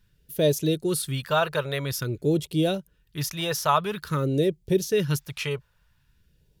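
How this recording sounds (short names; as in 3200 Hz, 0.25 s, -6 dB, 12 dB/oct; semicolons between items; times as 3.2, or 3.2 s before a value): phasing stages 2, 0.49 Hz, lowest notch 280–1300 Hz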